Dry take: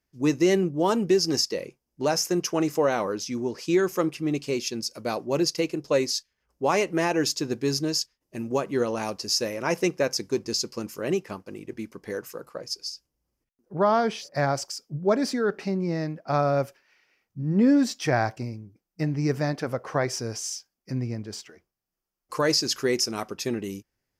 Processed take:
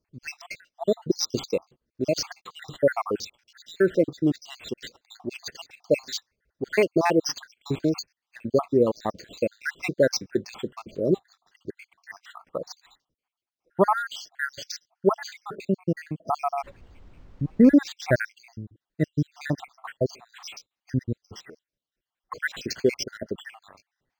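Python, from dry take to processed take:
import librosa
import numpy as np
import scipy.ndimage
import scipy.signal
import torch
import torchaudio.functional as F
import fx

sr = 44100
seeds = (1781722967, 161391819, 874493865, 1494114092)

y = fx.spec_dropout(x, sr, seeds[0], share_pct=79)
y = fx.dmg_noise_colour(y, sr, seeds[1], colour='brown', level_db=-53.0, at=(16.63, 17.72), fade=0.02)
y = np.interp(np.arange(len(y)), np.arange(len(y))[::4], y[::4])
y = F.gain(torch.from_numpy(y), 5.5).numpy()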